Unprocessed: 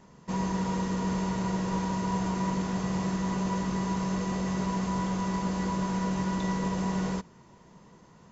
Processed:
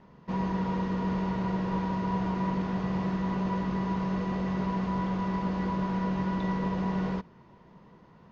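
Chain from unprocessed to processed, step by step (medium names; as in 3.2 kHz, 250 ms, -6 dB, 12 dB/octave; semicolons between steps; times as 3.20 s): Bessel low-pass 3 kHz, order 6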